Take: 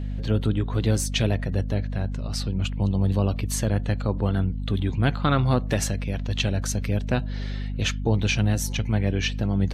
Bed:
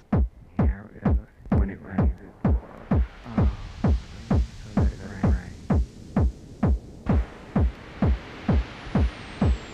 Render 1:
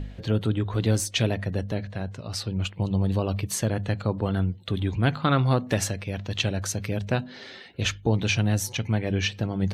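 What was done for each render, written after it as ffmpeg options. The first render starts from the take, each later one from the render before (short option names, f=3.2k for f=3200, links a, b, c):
-af "bandreject=f=50:t=h:w=4,bandreject=f=100:t=h:w=4,bandreject=f=150:t=h:w=4,bandreject=f=200:t=h:w=4,bandreject=f=250:t=h:w=4"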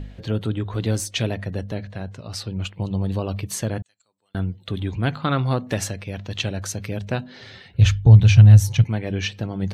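-filter_complex "[0:a]asettb=1/sr,asplit=3[a][b][c];[a]atrim=end=3.824[d];[b]atrim=start=3.82:end=4.35,asetpts=PTS-STARTPTS,afade=t=in:d=0.004:c=qsin,afade=t=out:st=0.526:d=0.004:c=qsin,bandpass=f=7.6k:t=q:w=8.8[e];[c]atrim=start=4.346[f];[d][e]acrossfade=d=0.004:c1=hsin:c2=qsin[g];[g][f]acrossfade=d=0.004:c1=qsin:c2=hsin,asettb=1/sr,asplit=3[h][i][j];[h]atrim=end=7.414[k];[i]atrim=start=7.41:end=8.84,asetpts=PTS-STARTPTS,afade=t=in:d=0.004:c=qsin,afade=t=out:st=1.426:d=0.004:c=qsin,lowshelf=f=180:t=q:w=1.5:g=13.5[l];[j]atrim=start=8.836[m];[k][l]acrossfade=d=0.004:c1=hsin:c2=qsin[n];[n][m]acrossfade=d=0.004:c1=qsin:c2=hsin"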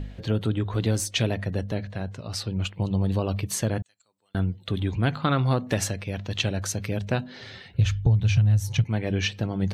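-af "acompressor=threshold=-17dB:ratio=8"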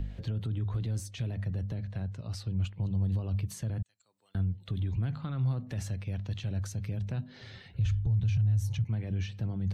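-filter_complex "[0:a]alimiter=limit=-20.5dB:level=0:latency=1:release=19,acrossover=split=170[a][b];[b]acompressor=threshold=-55dB:ratio=2[c];[a][c]amix=inputs=2:normalize=0"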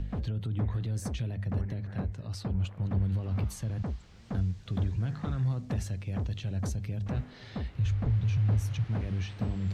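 -filter_complex "[1:a]volume=-13.5dB[a];[0:a][a]amix=inputs=2:normalize=0"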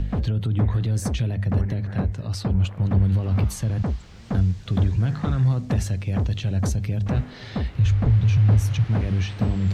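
-af "volume=9.5dB"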